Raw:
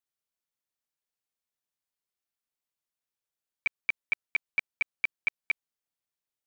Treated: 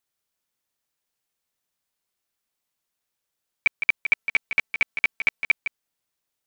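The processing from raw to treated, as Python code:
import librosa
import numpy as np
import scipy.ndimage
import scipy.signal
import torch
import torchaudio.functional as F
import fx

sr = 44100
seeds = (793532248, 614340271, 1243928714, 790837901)

p1 = fx.comb(x, sr, ms=4.5, depth=0.78, at=(4.13, 5.43), fade=0.02)
p2 = p1 + fx.echo_single(p1, sr, ms=161, db=-9.0, dry=0)
y = p2 * librosa.db_to_amplitude(8.5)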